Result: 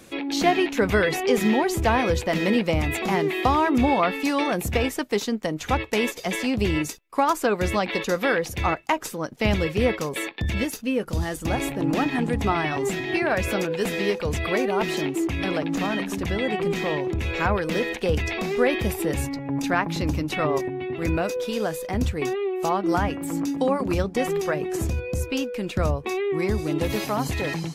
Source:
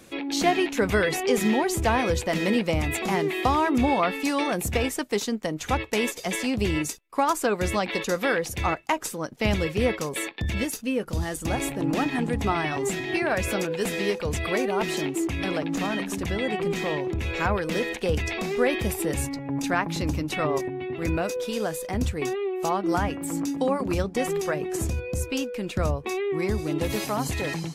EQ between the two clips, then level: dynamic bell 8.7 kHz, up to -6 dB, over -47 dBFS, Q 1; +2.0 dB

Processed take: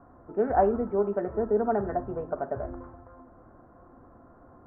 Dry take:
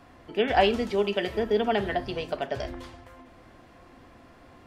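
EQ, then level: elliptic low-pass 1.4 kHz, stop band 70 dB; distance through air 120 m; 0.0 dB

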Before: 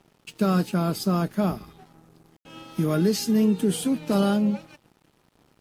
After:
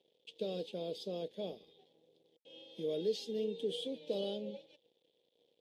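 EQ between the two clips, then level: two resonant band-passes 1.3 kHz, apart 2.8 oct; -1.0 dB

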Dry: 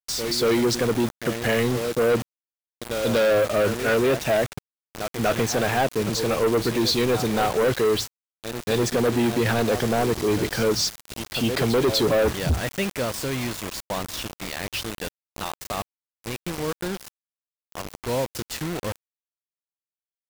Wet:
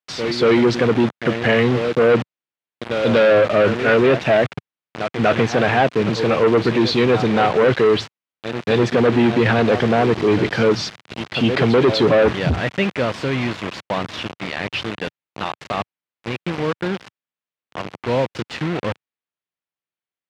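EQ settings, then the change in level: Chebyshev band-pass 120–2800 Hz, order 2; +7.0 dB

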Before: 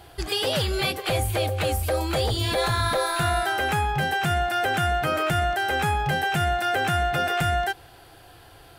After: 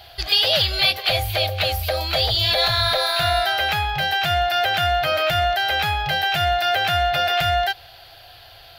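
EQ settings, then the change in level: FFT filter 100 Hz 0 dB, 270 Hz -13 dB, 440 Hz -7 dB, 650 Hz +7 dB, 940 Hz -2 dB, 4.4 kHz +13 dB, 8.7 kHz -10 dB, 13 kHz +6 dB; 0.0 dB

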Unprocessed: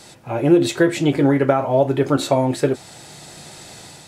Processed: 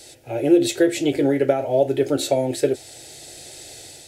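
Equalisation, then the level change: treble shelf 9.9 kHz +6 dB; static phaser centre 450 Hz, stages 4; 0.0 dB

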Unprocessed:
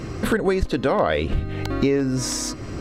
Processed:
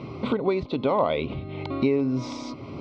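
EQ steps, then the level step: Butterworth band-stop 1.7 kHz, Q 1.8; cabinet simulation 190–3200 Hz, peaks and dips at 200 Hz -7 dB, 330 Hz -9 dB, 480 Hz -8 dB, 730 Hz -7 dB, 1.3 kHz -8 dB, 2.8 kHz -9 dB; +3.5 dB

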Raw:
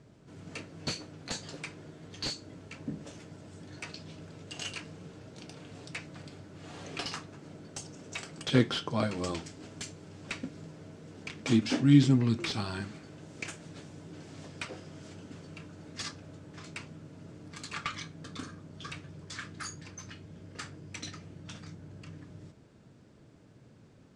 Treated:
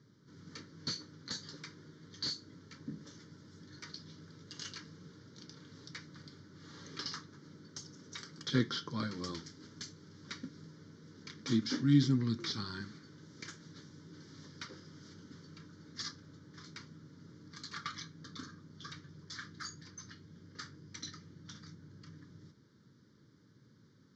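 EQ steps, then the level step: high-pass 110 Hz; resonant low-pass 6.3 kHz, resonance Q 1.7; static phaser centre 2.6 kHz, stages 6; -4.0 dB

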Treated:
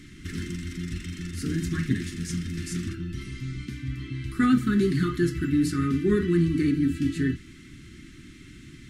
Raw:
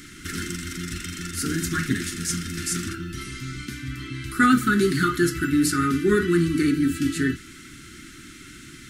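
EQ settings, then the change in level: tone controls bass +7 dB, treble -4 dB; peaking EQ 1.4 kHz -11.5 dB 0.27 oct; treble shelf 10 kHz -9.5 dB; -5.0 dB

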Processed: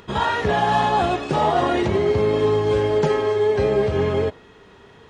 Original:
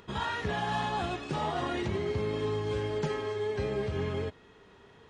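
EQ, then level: dynamic bell 590 Hz, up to +7 dB, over -45 dBFS, Q 0.79; +8.5 dB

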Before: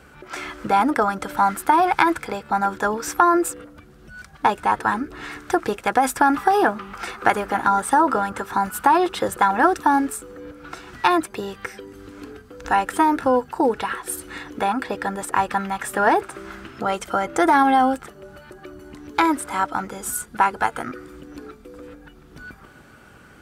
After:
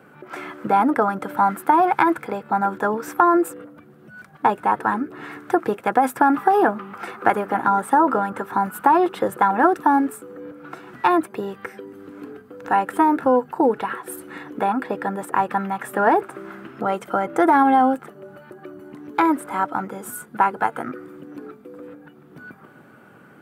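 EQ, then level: high-pass 130 Hz 24 dB/octave; peaking EQ 5.7 kHz -15 dB 2.2 oct; +2.0 dB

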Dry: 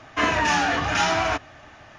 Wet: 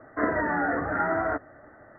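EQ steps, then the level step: rippled Chebyshev low-pass 2 kHz, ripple 9 dB; peaking EQ 280 Hz +6 dB 1.5 oct; 0.0 dB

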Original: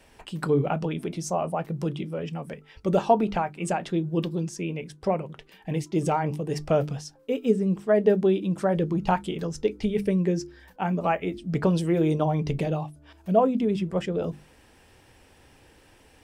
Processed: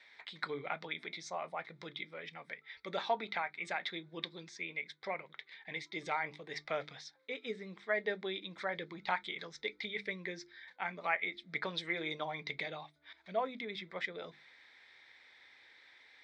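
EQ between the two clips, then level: two resonant band-passes 2.8 kHz, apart 0.8 oct; distance through air 110 m; +10.0 dB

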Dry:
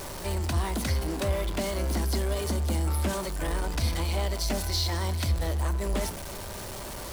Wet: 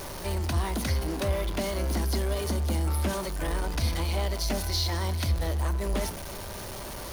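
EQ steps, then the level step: band-stop 7.7 kHz, Q 6.5; 0.0 dB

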